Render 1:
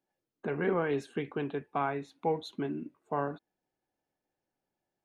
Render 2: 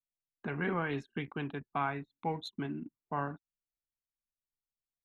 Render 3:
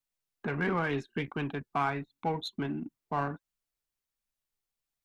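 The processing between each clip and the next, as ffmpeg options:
ffmpeg -i in.wav -af "anlmdn=0.0251,equalizer=frequency=470:width_type=o:width=1.3:gain=-11,volume=2dB" out.wav
ffmpeg -i in.wav -filter_complex "[0:a]asplit=2[link_01][link_02];[link_02]asoftclip=type=tanh:threshold=-37.5dB,volume=-5dB[link_03];[link_01][link_03]amix=inputs=2:normalize=0,flanger=delay=0.7:depth=2.3:regen=81:speed=1.4:shape=triangular,volume=6.5dB" out.wav

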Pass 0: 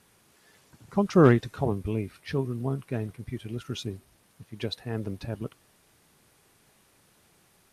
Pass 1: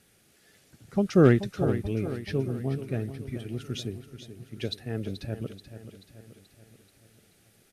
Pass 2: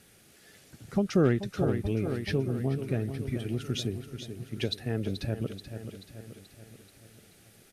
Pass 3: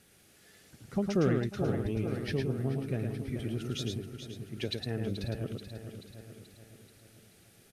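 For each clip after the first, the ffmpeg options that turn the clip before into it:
ffmpeg -i in.wav -af "equalizer=frequency=1000:width=3.4:gain=-15,aecho=1:1:432|864|1296|1728|2160|2592:0.266|0.138|0.0719|0.0374|0.0195|0.0101" out.wav
ffmpeg -i in.wav -af "acompressor=threshold=-32dB:ratio=2,volume=4.5dB" out.wav
ffmpeg -i in.wav -af "aecho=1:1:109:0.596,volume=-4dB" out.wav

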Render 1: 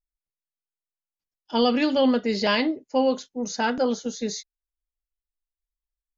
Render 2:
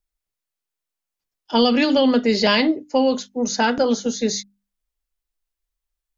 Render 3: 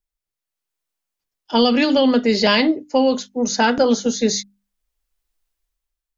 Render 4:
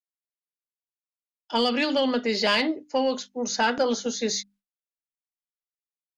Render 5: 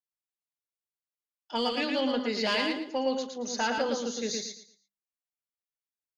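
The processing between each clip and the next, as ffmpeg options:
ffmpeg -i in.wav -filter_complex "[0:a]acrossover=split=250|3000[link_01][link_02][link_03];[link_02]acompressor=threshold=-23dB:ratio=6[link_04];[link_01][link_04][link_03]amix=inputs=3:normalize=0,bandreject=frequency=50:width_type=h:width=6,bandreject=frequency=100:width_type=h:width=6,bandreject=frequency=150:width_type=h:width=6,bandreject=frequency=200:width_type=h:width=6,bandreject=frequency=250:width_type=h:width=6,bandreject=frequency=300:width_type=h:width=6,volume=7.5dB" out.wav
ffmpeg -i in.wav -af "dynaudnorm=framelen=200:gausssize=7:maxgain=11dB,volume=-3dB" out.wav
ffmpeg -i in.wav -filter_complex "[0:a]agate=range=-33dB:threshold=-43dB:ratio=3:detection=peak,asplit=2[link_01][link_02];[link_02]highpass=frequency=720:poles=1,volume=8dB,asoftclip=type=tanh:threshold=-3.5dB[link_03];[link_01][link_03]amix=inputs=2:normalize=0,lowpass=frequency=6100:poles=1,volume=-6dB,volume=-7.5dB" out.wav
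ffmpeg -i in.wav -af "aecho=1:1:114|228|342|456:0.631|0.17|0.046|0.0124,volume=-6.5dB" out.wav

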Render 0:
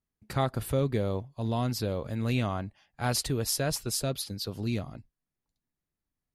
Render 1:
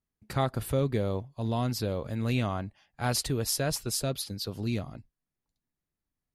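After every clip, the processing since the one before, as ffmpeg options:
ffmpeg -i in.wav -af anull out.wav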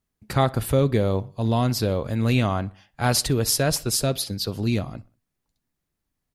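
ffmpeg -i in.wav -filter_complex "[0:a]asplit=2[link_01][link_02];[link_02]adelay=62,lowpass=frequency=4800:poles=1,volume=-22dB,asplit=2[link_03][link_04];[link_04]adelay=62,lowpass=frequency=4800:poles=1,volume=0.46,asplit=2[link_05][link_06];[link_06]adelay=62,lowpass=frequency=4800:poles=1,volume=0.46[link_07];[link_01][link_03][link_05][link_07]amix=inputs=4:normalize=0,volume=7.5dB" out.wav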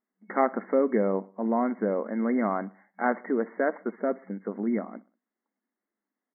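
ffmpeg -i in.wav -af "afftfilt=real='re*between(b*sr/4096,190,2200)':imag='im*between(b*sr/4096,190,2200)':win_size=4096:overlap=0.75,volume=-1.5dB" out.wav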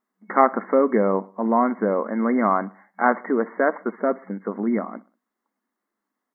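ffmpeg -i in.wav -af "equalizer=frequency=1100:width_type=o:width=0.71:gain=7.5,volume=4.5dB" out.wav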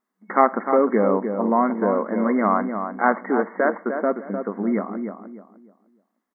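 ffmpeg -i in.wav -filter_complex "[0:a]asplit=2[link_01][link_02];[link_02]adelay=303,lowpass=frequency=1400:poles=1,volume=-6.5dB,asplit=2[link_03][link_04];[link_04]adelay=303,lowpass=frequency=1400:poles=1,volume=0.3,asplit=2[link_05][link_06];[link_06]adelay=303,lowpass=frequency=1400:poles=1,volume=0.3,asplit=2[link_07][link_08];[link_08]adelay=303,lowpass=frequency=1400:poles=1,volume=0.3[link_09];[link_01][link_03][link_05][link_07][link_09]amix=inputs=5:normalize=0" out.wav

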